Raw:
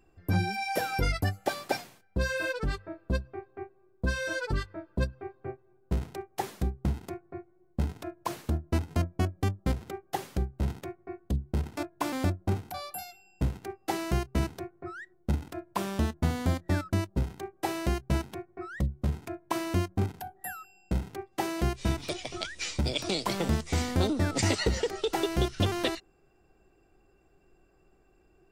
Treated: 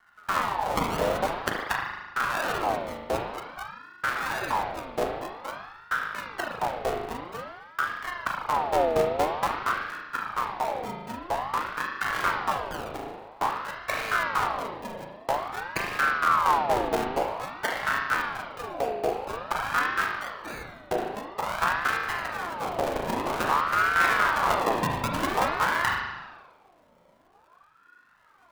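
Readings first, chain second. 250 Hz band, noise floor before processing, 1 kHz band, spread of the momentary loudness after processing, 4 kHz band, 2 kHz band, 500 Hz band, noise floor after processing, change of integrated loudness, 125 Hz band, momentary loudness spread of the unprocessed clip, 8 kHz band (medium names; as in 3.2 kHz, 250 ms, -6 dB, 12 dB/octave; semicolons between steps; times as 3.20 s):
-4.5 dB, -65 dBFS, +11.5 dB, 12 LU, +0.5 dB, +10.0 dB, +4.5 dB, -59 dBFS, +4.5 dB, -11.5 dB, 13 LU, -0.5 dB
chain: decimation with a swept rate 40×, swing 100% 0.62 Hz; spring tank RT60 1.2 s, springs 37 ms, chirp 40 ms, DRR -0.5 dB; ring modulator with a swept carrier 1 kHz, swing 45%, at 0.5 Hz; trim +3 dB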